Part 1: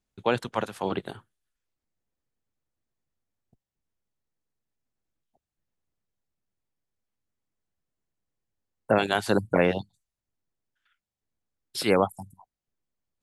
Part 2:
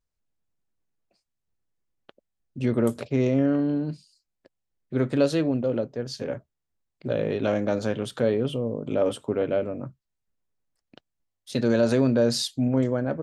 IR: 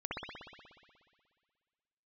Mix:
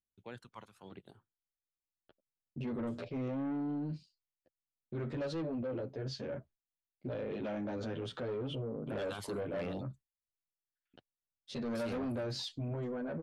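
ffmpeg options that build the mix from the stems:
-filter_complex "[0:a]aphaser=in_gain=1:out_gain=1:delay=1:decay=0.52:speed=0.81:type=triangular,volume=-9dB[a];[1:a]agate=range=-33dB:threshold=-45dB:ratio=3:detection=peak,lowpass=3.9k,asplit=2[b][c];[c]adelay=10.4,afreqshift=0.78[d];[b][d]amix=inputs=2:normalize=1,volume=0.5dB,asplit=2[e][f];[f]apad=whole_len=583254[g];[a][g]sidechaingate=range=-14dB:threshold=-42dB:ratio=16:detection=peak[h];[h][e]amix=inputs=2:normalize=0,asoftclip=type=tanh:threshold=-23.5dB,alimiter=level_in=9dB:limit=-24dB:level=0:latency=1:release=34,volume=-9dB"

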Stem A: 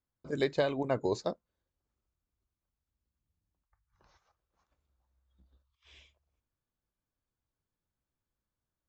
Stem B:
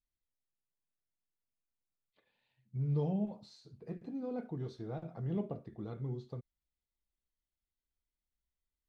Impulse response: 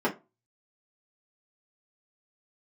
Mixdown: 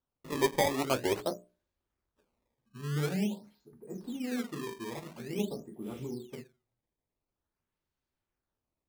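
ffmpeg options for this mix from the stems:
-filter_complex "[0:a]bandreject=f=60:t=h:w=6,bandreject=f=120:t=h:w=6,bandreject=f=180:t=h:w=6,bandreject=f=240:t=h:w=6,bandreject=f=300:t=h:w=6,bandreject=f=360:t=h:w=6,bandreject=f=420:t=h:w=6,bandreject=f=480:t=h:w=6,bandreject=f=540:t=h:w=6,bandreject=f=600:t=h:w=6,volume=0dB,asplit=3[a][b][c];[b]volume=-23.5dB[d];[1:a]volume=0dB,asplit=2[e][f];[f]volume=-13.5dB[g];[c]apad=whole_len=391919[h];[e][h]sidechaingate=range=-33dB:threshold=-60dB:ratio=16:detection=peak[i];[2:a]atrim=start_sample=2205[j];[d][g]amix=inputs=2:normalize=0[k];[k][j]afir=irnorm=-1:irlink=0[l];[a][i][l]amix=inputs=3:normalize=0,acrusher=samples=18:mix=1:aa=0.000001:lfo=1:lforange=28.8:lforate=0.47"

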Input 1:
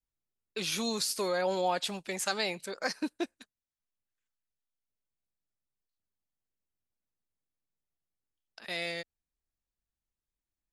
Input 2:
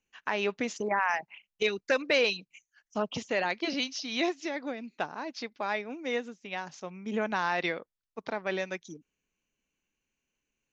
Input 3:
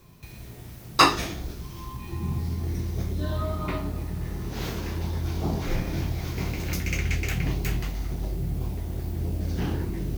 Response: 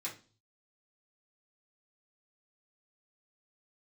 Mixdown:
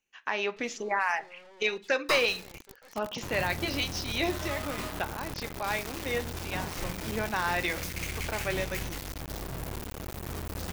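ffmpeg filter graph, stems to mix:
-filter_complex "[0:a]aemphasis=mode=reproduction:type=75kf,aecho=1:1:2.3:0.57,aeval=exprs='(tanh(89.1*val(0)+0.75)-tanh(0.75))/89.1':c=same,volume=-11.5dB[a];[1:a]volume=-0.5dB,asplit=2[b][c];[c]volume=-8.5dB[d];[2:a]aeval=exprs='0.75*(cos(1*acos(clip(val(0)/0.75,-1,1)))-cos(1*PI/2))+0.0211*(cos(3*acos(clip(val(0)/0.75,-1,1)))-cos(3*PI/2))+0.075*(cos(8*acos(clip(val(0)/0.75,-1,1)))-cos(8*PI/2))':c=same,acrusher=bits=4:mix=0:aa=0.000001,dynaudnorm=f=240:g=5:m=8.5dB,adelay=1100,volume=-14dB[e];[3:a]atrim=start_sample=2205[f];[d][f]afir=irnorm=-1:irlink=0[g];[a][b][e][g]amix=inputs=4:normalize=0,lowshelf=f=370:g=-5"

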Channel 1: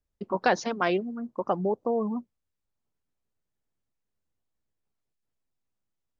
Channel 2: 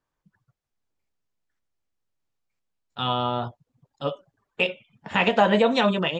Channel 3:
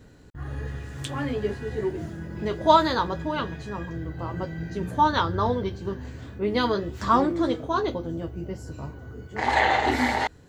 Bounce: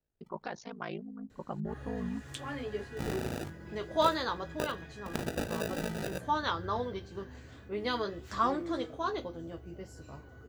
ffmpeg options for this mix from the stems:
-filter_complex "[0:a]asubboost=boost=9.5:cutoff=180,alimiter=limit=-14.5dB:level=0:latency=1:release=428,volume=-8.5dB[a];[1:a]bandreject=f=3.4k:w=12,acrusher=samples=41:mix=1:aa=0.000001,volume=-4dB[b];[2:a]equalizer=f=130:w=0.39:g=-7,bandreject=f=930:w=15,adelay=1300,volume=-6.5dB[c];[a][b]amix=inputs=2:normalize=0,aeval=exprs='val(0)*sin(2*PI*27*n/s)':c=same,acompressor=threshold=-31dB:ratio=10,volume=0dB[d];[c][d]amix=inputs=2:normalize=0"

